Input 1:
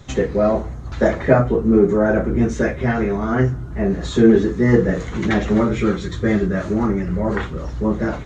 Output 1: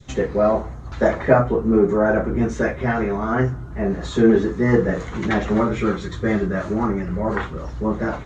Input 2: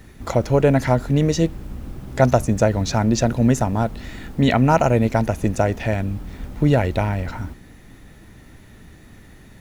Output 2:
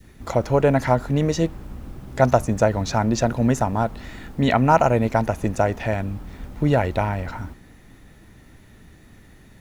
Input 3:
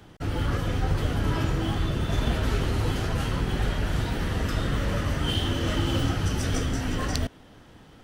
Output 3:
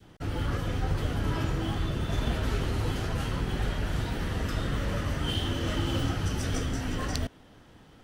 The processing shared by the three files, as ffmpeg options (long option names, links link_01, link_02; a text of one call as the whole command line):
ffmpeg -i in.wav -af "adynamicequalizer=threshold=0.0316:dfrequency=1000:dqfactor=0.84:tfrequency=1000:tqfactor=0.84:attack=5:release=100:ratio=0.375:range=3:mode=boostabove:tftype=bell,volume=-3.5dB" out.wav